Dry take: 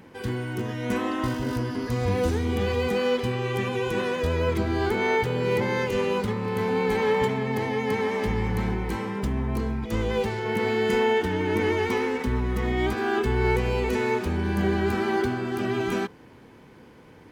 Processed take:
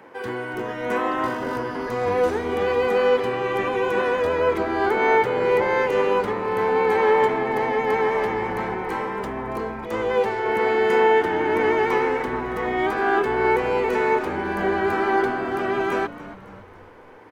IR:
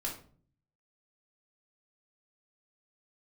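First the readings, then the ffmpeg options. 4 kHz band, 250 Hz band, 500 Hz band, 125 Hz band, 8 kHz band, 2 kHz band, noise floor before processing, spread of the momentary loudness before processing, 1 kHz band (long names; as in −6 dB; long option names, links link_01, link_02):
−1.0 dB, −1.5 dB, +5.0 dB, −9.5 dB, can't be measured, +5.0 dB, −50 dBFS, 5 LU, +8.0 dB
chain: -filter_complex "[0:a]highpass=76,acrossover=split=390 2000:gain=0.112 1 0.224[link_01][link_02][link_03];[link_01][link_02][link_03]amix=inputs=3:normalize=0,asplit=2[link_04][link_05];[link_05]asplit=5[link_06][link_07][link_08][link_09][link_10];[link_06]adelay=278,afreqshift=-99,volume=-16dB[link_11];[link_07]adelay=556,afreqshift=-198,volume=-21.5dB[link_12];[link_08]adelay=834,afreqshift=-297,volume=-27dB[link_13];[link_09]adelay=1112,afreqshift=-396,volume=-32.5dB[link_14];[link_10]adelay=1390,afreqshift=-495,volume=-38.1dB[link_15];[link_11][link_12][link_13][link_14][link_15]amix=inputs=5:normalize=0[link_16];[link_04][link_16]amix=inputs=2:normalize=0,volume=8.5dB"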